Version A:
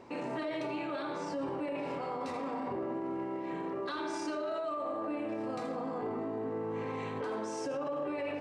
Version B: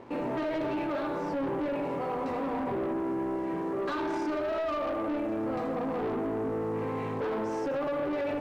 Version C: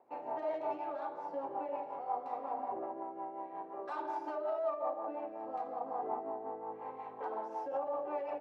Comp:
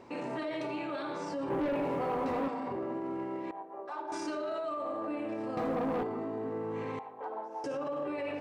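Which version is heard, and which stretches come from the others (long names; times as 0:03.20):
A
0:01.50–0:02.48: punch in from B
0:03.51–0:04.12: punch in from C
0:05.57–0:06.03: punch in from B
0:06.99–0:07.64: punch in from C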